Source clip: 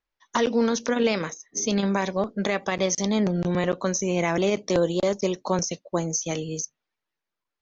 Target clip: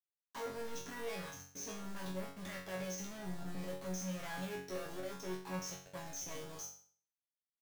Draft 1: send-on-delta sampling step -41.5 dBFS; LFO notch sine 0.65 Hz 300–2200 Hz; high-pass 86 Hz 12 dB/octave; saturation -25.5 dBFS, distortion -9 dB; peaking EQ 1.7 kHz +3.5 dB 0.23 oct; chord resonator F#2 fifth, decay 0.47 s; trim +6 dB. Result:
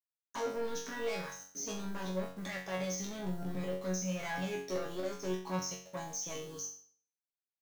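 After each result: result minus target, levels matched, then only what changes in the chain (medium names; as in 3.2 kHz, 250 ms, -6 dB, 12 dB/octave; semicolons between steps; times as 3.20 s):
send-on-delta sampling: distortion -11 dB; saturation: distortion -4 dB
change: send-on-delta sampling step -31.5 dBFS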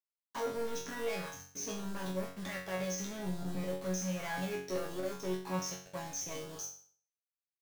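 saturation: distortion -4 dB
change: saturation -33.5 dBFS, distortion -5 dB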